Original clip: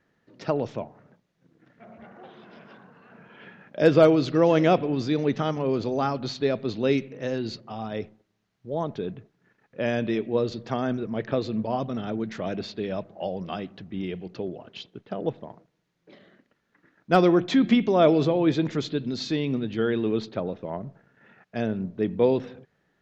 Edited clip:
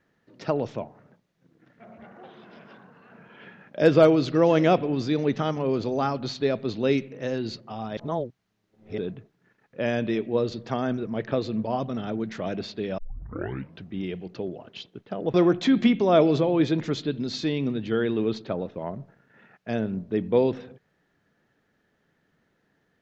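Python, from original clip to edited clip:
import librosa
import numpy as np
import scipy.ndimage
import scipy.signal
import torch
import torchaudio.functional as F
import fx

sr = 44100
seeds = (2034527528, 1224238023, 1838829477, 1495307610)

y = fx.edit(x, sr, fx.reverse_span(start_s=7.97, length_s=1.01),
    fx.tape_start(start_s=12.98, length_s=0.88),
    fx.cut(start_s=15.34, length_s=1.87), tone=tone)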